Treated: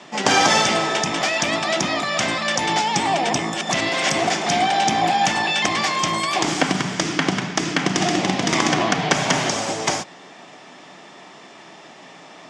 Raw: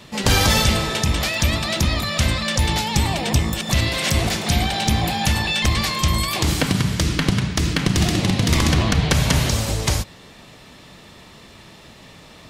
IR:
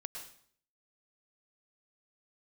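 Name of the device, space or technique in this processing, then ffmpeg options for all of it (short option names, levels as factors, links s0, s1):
television speaker: -af "highpass=f=200:w=0.5412,highpass=f=200:w=1.3066,equalizer=f=220:t=q:w=4:g=-7,equalizer=f=490:t=q:w=4:g=-5,equalizer=f=740:t=q:w=4:g=6,equalizer=f=2700:t=q:w=4:g=-3,equalizer=f=4100:t=q:w=4:g=-10,lowpass=f=7000:w=0.5412,lowpass=f=7000:w=1.3066,volume=1.58"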